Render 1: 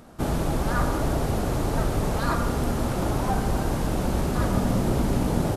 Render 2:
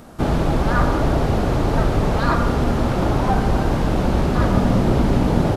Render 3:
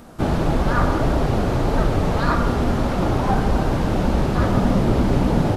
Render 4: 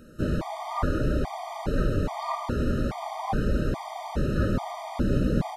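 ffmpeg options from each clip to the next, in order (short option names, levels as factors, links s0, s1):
-filter_complex "[0:a]acrossover=split=5200[s0][s1];[s1]acompressor=threshold=0.00141:ratio=4:attack=1:release=60[s2];[s0][s2]amix=inputs=2:normalize=0,volume=2.11"
-af "flanger=delay=3.1:depth=9.1:regen=-44:speed=1.7:shape=triangular,volume=1.41"
-af "afftfilt=real='re*gt(sin(2*PI*1.2*pts/sr)*(1-2*mod(floor(b*sr/1024/620),2)),0)':imag='im*gt(sin(2*PI*1.2*pts/sr)*(1-2*mod(floor(b*sr/1024/620),2)),0)':win_size=1024:overlap=0.75,volume=0.531"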